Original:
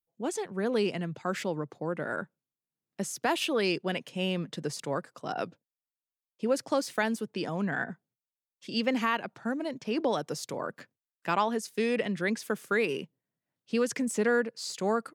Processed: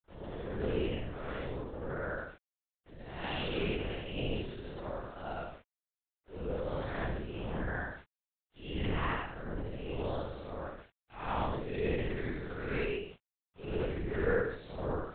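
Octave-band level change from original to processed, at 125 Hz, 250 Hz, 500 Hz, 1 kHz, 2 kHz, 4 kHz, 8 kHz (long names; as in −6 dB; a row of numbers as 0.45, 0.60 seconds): +1.0 dB, −8.0 dB, −6.0 dB, −7.5 dB, −7.0 dB, −8.0 dB, below −40 dB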